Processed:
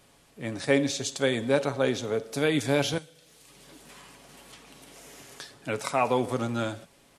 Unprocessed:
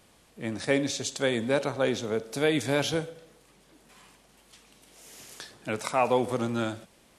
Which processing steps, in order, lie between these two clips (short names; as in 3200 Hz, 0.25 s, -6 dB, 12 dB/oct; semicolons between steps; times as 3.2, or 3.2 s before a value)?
comb 7.2 ms, depth 35%; 2.98–5.39 three-band squash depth 100%